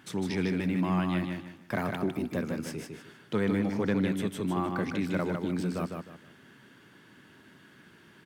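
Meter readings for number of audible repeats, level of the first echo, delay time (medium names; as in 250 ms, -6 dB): 3, -5.0 dB, 154 ms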